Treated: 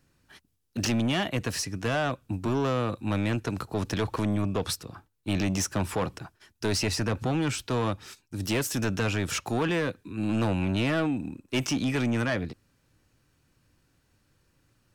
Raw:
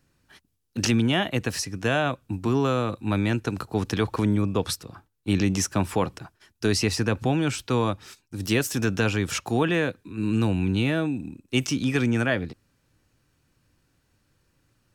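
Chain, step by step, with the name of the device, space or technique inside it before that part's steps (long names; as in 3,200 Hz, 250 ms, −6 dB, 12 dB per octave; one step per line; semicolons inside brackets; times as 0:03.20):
0:10.29–0:11.84: parametric band 960 Hz +7 dB 2.1 octaves
saturation between pre-emphasis and de-emphasis (high-shelf EQ 10,000 Hz +6 dB; soft clipping −21 dBFS, distortion −11 dB; high-shelf EQ 10,000 Hz −6 dB)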